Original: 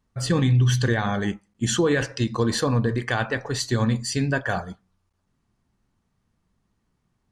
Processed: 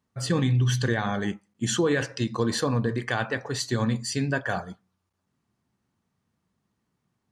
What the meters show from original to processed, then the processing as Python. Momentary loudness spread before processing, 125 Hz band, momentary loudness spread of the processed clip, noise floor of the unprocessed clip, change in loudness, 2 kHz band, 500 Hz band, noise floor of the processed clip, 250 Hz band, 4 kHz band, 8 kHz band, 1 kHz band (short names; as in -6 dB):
8 LU, -4.0 dB, 8 LU, -73 dBFS, -3.0 dB, -2.5 dB, -2.5 dB, -79 dBFS, -2.5 dB, -2.5 dB, -2.5 dB, -2.5 dB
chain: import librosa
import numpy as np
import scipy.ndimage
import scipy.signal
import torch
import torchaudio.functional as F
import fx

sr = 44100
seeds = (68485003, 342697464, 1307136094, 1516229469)

y = scipy.signal.sosfilt(scipy.signal.butter(2, 100.0, 'highpass', fs=sr, output='sos'), x)
y = y * 10.0 ** (-2.5 / 20.0)